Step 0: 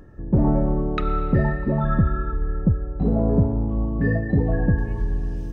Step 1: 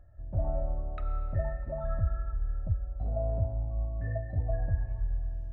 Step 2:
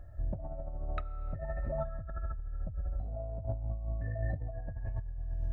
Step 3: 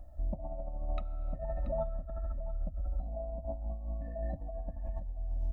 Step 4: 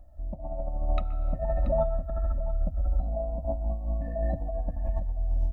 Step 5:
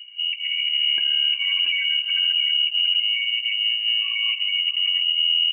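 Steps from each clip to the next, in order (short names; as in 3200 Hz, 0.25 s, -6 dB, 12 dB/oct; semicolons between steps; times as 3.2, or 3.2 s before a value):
EQ curve 100 Hz 0 dB, 180 Hz -21 dB, 280 Hz -19 dB, 450 Hz -22 dB, 640 Hz +4 dB, 950 Hz -15 dB, 1400 Hz -9 dB, 2500 Hz -14 dB, 4600 Hz -19 dB; gain -7 dB
negative-ratio compressor -37 dBFS, ratio -1; gain +1 dB
fixed phaser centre 420 Hz, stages 6; echo 0.681 s -13.5 dB; gain +2.5 dB
AGC gain up to 11 dB; on a send at -17.5 dB: reverb, pre-delay 0.121 s; on the sum: gain -2.5 dB
thin delay 85 ms, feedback 78%, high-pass 2300 Hz, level -12.5 dB; limiter -23.5 dBFS, peak gain reduction 8.5 dB; inverted band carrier 2900 Hz; gain +6 dB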